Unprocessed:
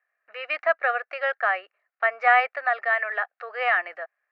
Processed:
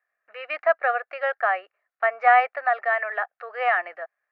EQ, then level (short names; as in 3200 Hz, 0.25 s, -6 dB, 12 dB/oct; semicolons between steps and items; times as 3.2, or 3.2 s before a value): high shelf 3300 Hz -9 dB; dynamic EQ 770 Hz, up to +4 dB, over -36 dBFS, Q 1.4; 0.0 dB